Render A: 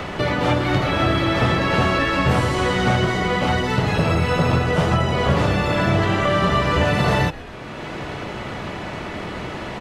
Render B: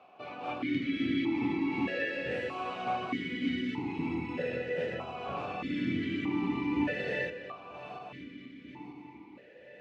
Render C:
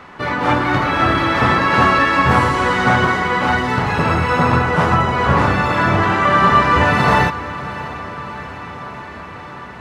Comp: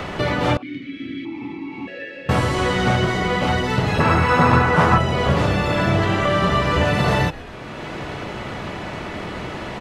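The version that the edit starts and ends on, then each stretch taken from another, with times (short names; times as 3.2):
A
0.57–2.29 from B
4–4.98 from C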